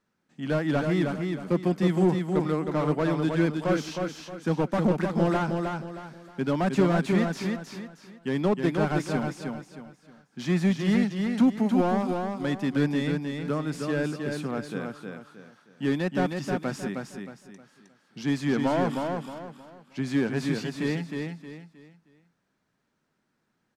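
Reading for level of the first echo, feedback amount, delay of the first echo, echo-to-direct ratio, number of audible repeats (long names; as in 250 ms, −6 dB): −4.5 dB, 33%, 313 ms, −4.0 dB, 4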